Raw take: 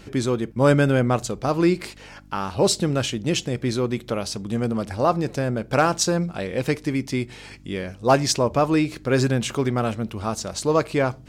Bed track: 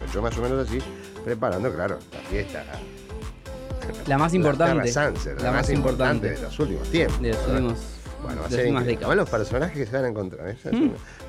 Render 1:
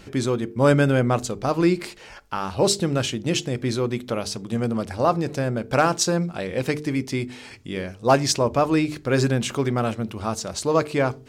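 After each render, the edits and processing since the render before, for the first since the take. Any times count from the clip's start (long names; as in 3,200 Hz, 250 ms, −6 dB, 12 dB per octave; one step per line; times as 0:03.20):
hum removal 50 Hz, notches 9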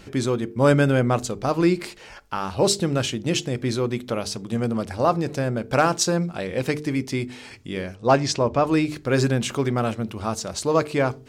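0:07.96–0:08.67: high-frequency loss of the air 67 metres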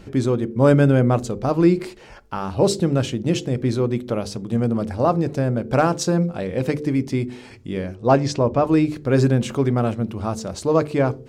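tilt shelving filter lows +5 dB, about 910 Hz
hum removal 73.69 Hz, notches 7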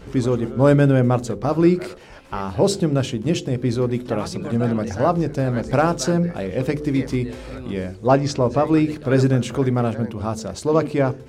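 mix in bed track −11.5 dB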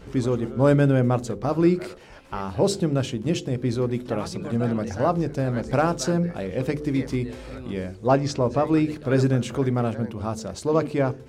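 level −3.5 dB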